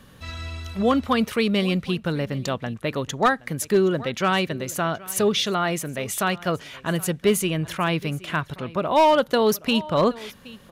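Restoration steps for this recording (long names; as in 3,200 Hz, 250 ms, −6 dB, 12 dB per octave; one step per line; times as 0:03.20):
clipped peaks rebuilt −11.5 dBFS
echo removal 772 ms −20.5 dB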